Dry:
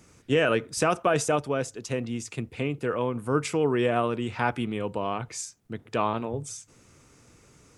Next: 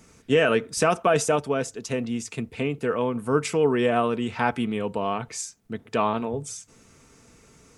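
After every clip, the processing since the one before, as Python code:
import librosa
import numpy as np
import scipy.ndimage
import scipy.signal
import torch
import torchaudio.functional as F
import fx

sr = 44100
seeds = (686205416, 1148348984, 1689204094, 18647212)

y = x + 0.34 * np.pad(x, (int(4.5 * sr / 1000.0), 0))[:len(x)]
y = y * 10.0 ** (2.0 / 20.0)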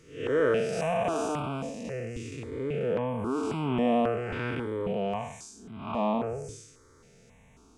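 y = fx.spec_blur(x, sr, span_ms=237.0)
y = fx.high_shelf(y, sr, hz=5500.0, db=-12.0)
y = fx.phaser_held(y, sr, hz=3.7, low_hz=210.0, high_hz=1800.0)
y = y * 10.0 ** (2.5 / 20.0)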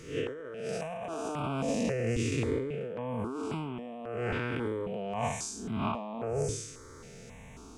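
y = fx.over_compress(x, sr, threshold_db=-37.0, ratio=-1.0)
y = y * 10.0 ** (2.5 / 20.0)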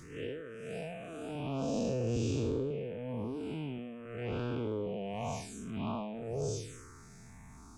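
y = fx.spec_blur(x, sr, span_ms=167.0)
y = fx.transient(y, sr, attack_db=-12, sustain_db=4)
y = fx.env_phaser(y, sr, low_hz=410.0, high_hz=2000.0, full_db=-30.0)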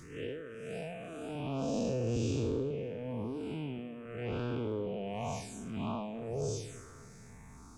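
y = fx.echo_filtered(x, sr, ms=286, feedback_pct=54, hz=5000.0, wet_db=-20)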